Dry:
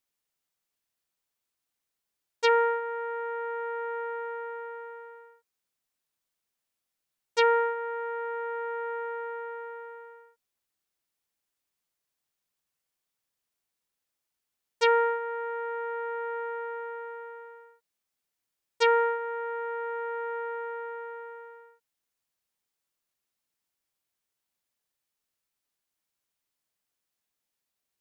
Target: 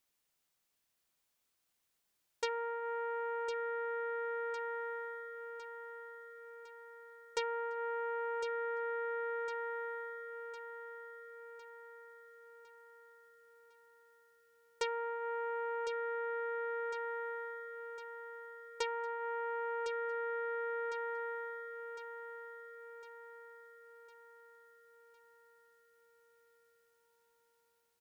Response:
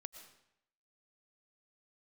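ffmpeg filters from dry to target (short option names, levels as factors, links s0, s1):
-af "acompressor=threshold=0.0141:ratio=16,aecho=1:1:1056|2112|3168|4224|5280|6336:0.398|0.207|0.108|0.056|0.0291|0.0151,volume=1.41"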